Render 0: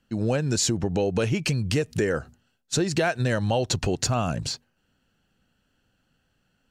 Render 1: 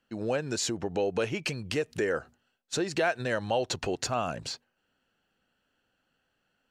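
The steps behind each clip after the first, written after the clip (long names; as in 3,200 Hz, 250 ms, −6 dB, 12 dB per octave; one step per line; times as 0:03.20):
bass and treble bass −12 dB, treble −6 dB
level −2 dB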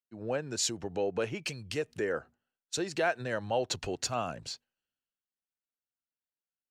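multiband upward and downward expander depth 70%
level −3.5 dB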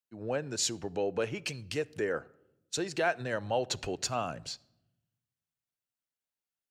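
rectangular room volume 3,200 cubic metres, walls furnished, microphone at 0.32 metres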